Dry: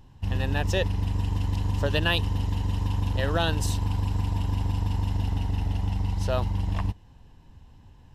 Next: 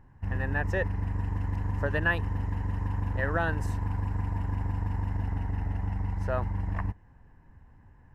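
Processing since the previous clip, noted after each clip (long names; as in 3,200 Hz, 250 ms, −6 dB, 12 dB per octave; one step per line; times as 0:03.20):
high shelf with overshoot 2,500 Hz −11 dB, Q 3
level −4 dB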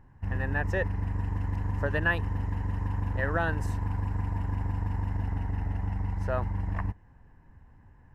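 no processing that can be heard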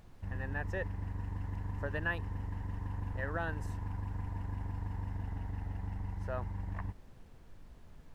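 background noise brown −44 dBFS
level −8.5 dB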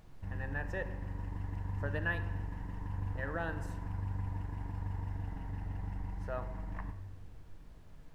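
convolution reverb RT60 1.2 s, pre-delay 6 ms, DRR 8.5 dB
level −1 dB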